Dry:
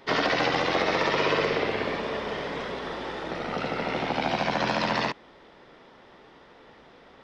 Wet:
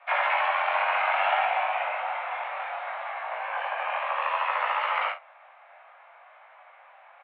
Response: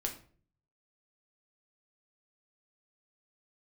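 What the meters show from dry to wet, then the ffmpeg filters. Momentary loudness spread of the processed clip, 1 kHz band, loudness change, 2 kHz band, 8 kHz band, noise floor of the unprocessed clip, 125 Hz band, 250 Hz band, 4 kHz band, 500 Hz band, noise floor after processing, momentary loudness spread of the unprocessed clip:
9 LU, +3.5 dB, 0.0 dB, +1.0 dB, can't be measured, −53 dBFS, below −40 dB, below −40 dB, −7.0 dB, −6.5 dB, −54 dBFS, 10 LU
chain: -af "highpass=frequency=290:width_type=q:width=0.5412,highpass=frequency=290:width_type=q:width=1.307,lowpass=frequency=2500:width_type=q:width=0.5176,lowpass=frequency=2500:width_type=q:width=0.7071,lowpass=frequency=2500:width_type=q:width=1.932,afreqshift=300,flanger=delay=18.5:depth=4.7:speed=0.62,aecho=1:1:36|49:0.266|0.2,volume=3dB"

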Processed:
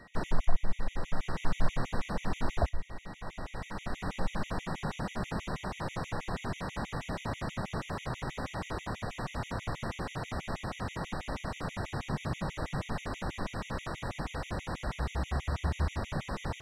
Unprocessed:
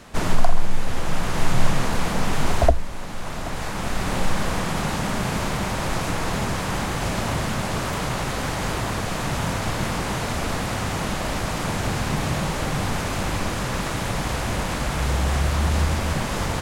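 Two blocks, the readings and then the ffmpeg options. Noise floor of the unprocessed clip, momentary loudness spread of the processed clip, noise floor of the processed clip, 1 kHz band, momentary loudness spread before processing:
−28 dBFS, 5 LU, −50 dBFS, −12.0 dB, 5 LU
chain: -af "aemphasis=mode=reproduction:type=50kf,aeval=exprs='val(0)+0.00501*sin(2*PI*1900*n/s)':channel_layout=same,afftfilt=real='re*gt(sin(2*PI*6.2*pts/sr)*(1-2*mod(floor(b*sr/1024/1900),2)),0)':imag='im*gt(sin(2*PI*6.2*pts/sr)*(1-2*mod(floor(b*sr/1024/1900),2)),0)':win_size=1024:overlap=0.75,volume=-8dB"

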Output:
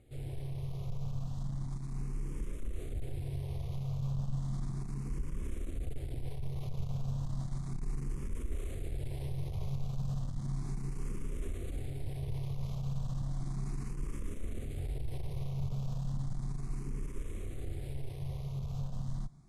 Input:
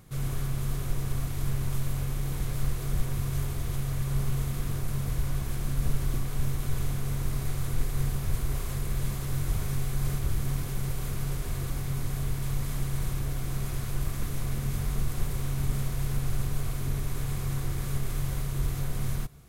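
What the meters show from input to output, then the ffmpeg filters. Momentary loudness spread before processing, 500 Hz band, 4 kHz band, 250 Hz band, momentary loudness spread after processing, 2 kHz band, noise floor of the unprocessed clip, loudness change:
2 LU, −7.0 dB, −13.5 dB, −6.5 dB, 5 LU, −15.5 dB, −33 dBFS, −7.5 dB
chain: -filter_complex "[0:a]highshelf=frequency=3200:gain=-10.5,asoftclip=type=tanh:threshold=-23.5dB,dynaudnorm=framelen=800:gausssize=11:maxgain=9dB,alimiter=level_in=1dB:limit=-24dB:level=0:latency=1:release=78,volume=-1dB,lowpass=frequency=11000:width=0.5412,lowpass=frequency=11000:width=1.3066,equalizer=frequency=1500:width=1.8:gain=-11,asplit=2[link_01][link_02];[link_02]afreqshift=0.34[link_03];[link_01][link_03]amix=inputs=2:normalize=1,volume=-2.5dB"

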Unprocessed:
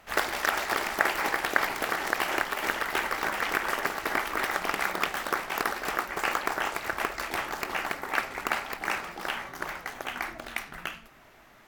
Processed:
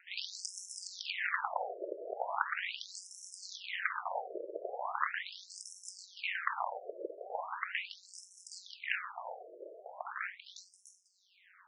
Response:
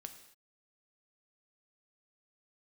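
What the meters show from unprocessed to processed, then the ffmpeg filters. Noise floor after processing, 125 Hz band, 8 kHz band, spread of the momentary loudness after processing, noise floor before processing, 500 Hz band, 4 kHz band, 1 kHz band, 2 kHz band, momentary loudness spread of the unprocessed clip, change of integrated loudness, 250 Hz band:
−66 dBFS, below −40 dB, −8.0 dB, 14 LU, −55 dBFS, −8.5 dB, −8.5 dB, −10.0 dB, −11.0 dB, 9 LU, −10.0 dB, −18.0 dB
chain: -af "aeval=exprs='0.316*(abs(mod(val(0)/0.316+3,4)-2)-1)':channel_layout=same,aeval=exprs='val(0)*sin(2*PI*93*n/s)':channel_layout=same,afftfilt=real='re*between(b*sr/1024,450*pow(7600/450,0.5+0.5*sin(2*PI*0.39*pts/sr))/1.41,450*pow(7600/450,0.5+0.5*sin(2*PI*0.39*pts/sr))*1.41)':imag='im*between(b*sr/1024,450*pow(7600/450,0.5+0.5*sin(2*PI*0.39*pts/sr))/1.41,450*pow(7600/450,0.5+0.5*sin(2*PI*0.39*pts/sr))*1.41)':win_size=1024:overlap=0.75,volume=1dB"

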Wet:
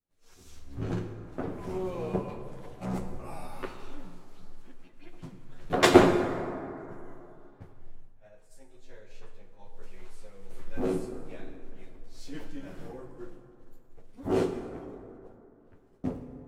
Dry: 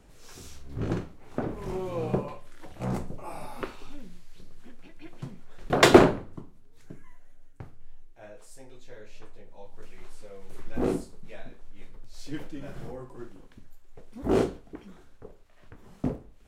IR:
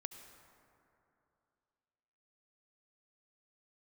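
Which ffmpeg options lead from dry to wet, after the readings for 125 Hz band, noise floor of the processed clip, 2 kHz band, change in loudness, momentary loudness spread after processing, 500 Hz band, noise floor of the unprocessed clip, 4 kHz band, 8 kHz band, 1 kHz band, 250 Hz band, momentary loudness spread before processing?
−3.0 dB, −57 dBFS, −3.0 dB, −2.5 dB, 23 LU, −2.0 dB, −52 dBFS, −3.0 dB, −3.0 dB, −2.0 dB, −1.5 dB, 23 LU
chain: -filter_complex "[0:a]agate=range=-33dB:threshold=-38dB:ratio=3:detection=peak,asplit=2[link_01][link_02];[1:a]atrim=start_sample=2205,adelay=11[link_03];[link_02][link_03]afir=irnorm=-1:irlink=0,volume=8dB[link_04];[link_01][link_04]amix=inputs=2:normalize=0,volume=-8.5dB"

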